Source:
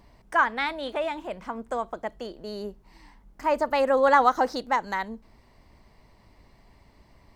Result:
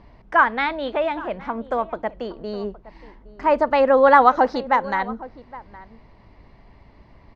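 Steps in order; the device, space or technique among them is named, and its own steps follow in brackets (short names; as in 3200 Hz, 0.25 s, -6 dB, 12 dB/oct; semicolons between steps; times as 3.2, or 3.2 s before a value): shout across a valley (air absorption 230 m; outdoor echo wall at 140 m, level -18 dB); gain +7 dB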